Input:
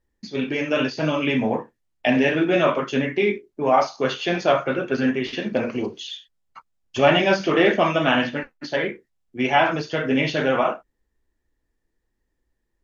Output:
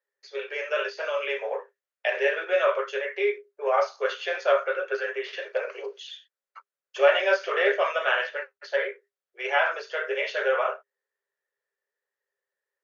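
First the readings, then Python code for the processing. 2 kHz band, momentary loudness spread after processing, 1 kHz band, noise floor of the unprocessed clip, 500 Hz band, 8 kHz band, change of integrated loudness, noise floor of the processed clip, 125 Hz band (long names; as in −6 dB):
−2.0 dB, 13 LU, −6.0 dB, −76 dBFS, −3.5 dB, can't be measured, −5.0 dB, below −85 dBFS, below −40 dB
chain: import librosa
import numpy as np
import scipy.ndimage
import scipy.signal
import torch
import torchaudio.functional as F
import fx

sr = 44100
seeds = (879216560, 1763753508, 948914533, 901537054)

y = scipy.signal.sosfilt(scipy.signal.cheby1(6, 9, 390.0, 'highpass', fs=sr, output='sos'), x)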